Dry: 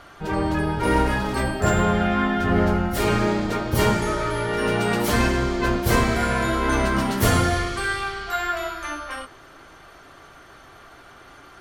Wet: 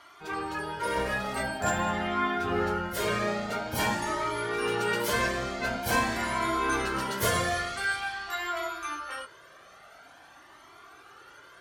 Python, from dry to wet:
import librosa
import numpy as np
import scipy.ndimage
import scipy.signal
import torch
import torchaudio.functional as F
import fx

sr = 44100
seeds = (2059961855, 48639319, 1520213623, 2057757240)

y = fx.highpass(x, sr, hz=fx.steps((0.0, 790.0), (0.97, 340.0)), slope=6)
y = fx.comb_cascade(y, sr, direction='rising', hz=0.47)